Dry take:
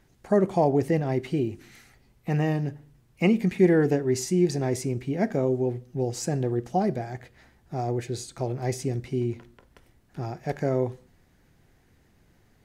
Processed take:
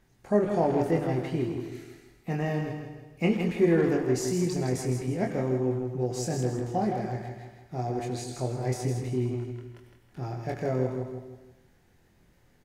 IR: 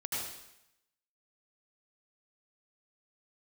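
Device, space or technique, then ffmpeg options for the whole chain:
saturated reverb return: -filter_complex "[0:a]asplit=2[a][b];[b]adelay=24,volume=-4dB[c];[a][c]amix=inputs=2:normalize=0,aecho=1:1:161|322|483|644:0.473|0.175|0.0648|0.024,asplit=2[d][e];[1:a]atrim=start_sample=2205[f];[e][f]afir=irnorm=-1:irlink=0,asoftclip=type=tanh:threshold=-19.5dB,volume=-8dB[g];[d][g]amix=inputs=2:normalize=0,volume=-6dB"

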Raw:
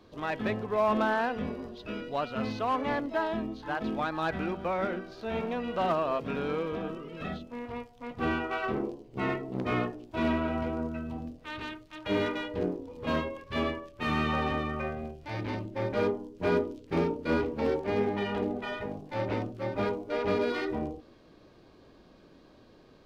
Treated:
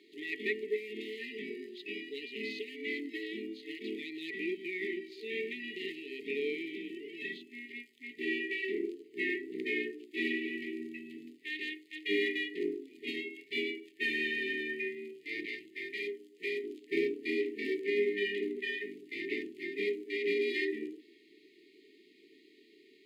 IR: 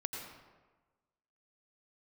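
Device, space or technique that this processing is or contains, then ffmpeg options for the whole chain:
laptop speaker: -filter_complex "[0:a]highpass=f=340:w=0.5412,highpass=f=340:w=1.3066,equalizer=f=1.1k:t=o:w=0.37:g=12,equalizer=f=2.1k:t=o:w=0.53:g=5.5,alimiter=limit=-18dB:level=0:latency=1:release=191,asettb=1/sr,asplit=3[a][b][c];[a]atrim=end=15.454[d];[b]atrim=start=15.45:end=16.64,asetpts=PTS-STARTPTS,afade=t=in:d=0.004:c=qsin,afade=t=out:st=1.186:d=0.004:c=qsin,equalizer=f=260:t=o:w=1.9:g=-11[e];[c]atrim=start=16.636[f];[d][e]acrossfade=d=0.004:c1=hsin:c2=qsin[g];[g][f]acrossfade=d=0.004:c1=qsin:c2=hsin,afftfilt=real='re*(1-between(b*sr/4096,450,1800))':imag='im*(1-between(b*sr/4096,450,1800))':win_size=4096:overlap=0.75,equalizer=f=5.7k:t=o:w=0.26:g=-13,volume=1.5dB"

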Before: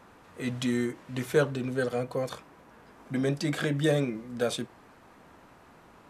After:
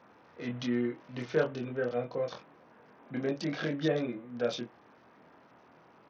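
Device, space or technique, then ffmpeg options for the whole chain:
Bluetooth headset: -filter_complex "[0:a]highpass=120,equalizer=f=570:w=1.2:g=2.5,asplit=2[a][b];[b]adelay=25,volume=-3.5dB[c];[a][c]amix=inputs=2:normalize=0,aresample=16000,aresample=44100,volume=-6.5dB" -ar 48000 -c:a sbc -b:a 64k

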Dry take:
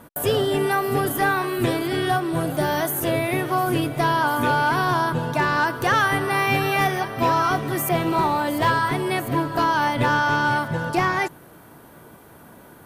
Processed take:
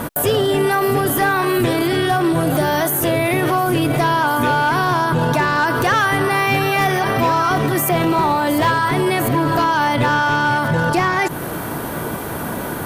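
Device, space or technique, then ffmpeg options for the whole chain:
loud club master: -af "acompressor=threshold=-30dB:ratio=1.5,asoftclip=type=hard:threshold=-18.5dB,alimiter=level_in=30.5dB:limit=-1dB:release=50:level=0:latency=1,volume=-9dB"

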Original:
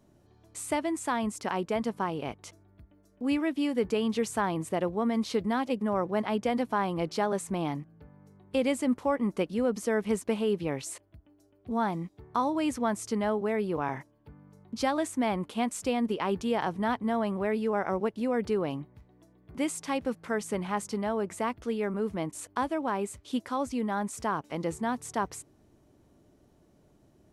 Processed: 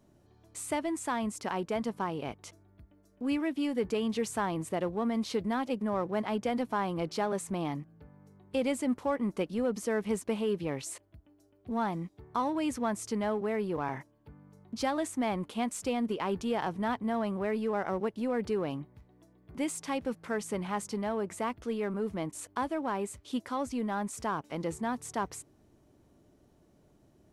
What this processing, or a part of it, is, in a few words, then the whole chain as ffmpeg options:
parallel distortion: -filter_complex "[0:a]asplit=2[a][b];[b]asoftclip=type=hard:threshold=-32dB,volume=-9dB[c];[a][c]amix=inputs=2:normalize=0,volume=-4dB"

